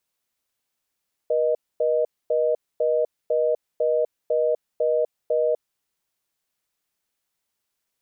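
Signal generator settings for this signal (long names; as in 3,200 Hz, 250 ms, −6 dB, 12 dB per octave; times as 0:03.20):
call progress tone reorder tone, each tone −21 dBFS 4.36 s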